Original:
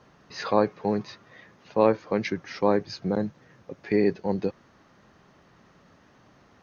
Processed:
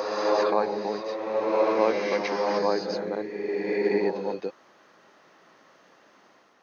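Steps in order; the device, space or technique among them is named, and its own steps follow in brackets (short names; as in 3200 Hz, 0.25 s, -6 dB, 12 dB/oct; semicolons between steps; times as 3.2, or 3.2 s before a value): ghost voice (reverse; reverb RT60 2.7 s, pre-delay 96 ms, DRR -3 dB; reverse; HPF 380 Hz 12 dB/oct); gain -1.5 dB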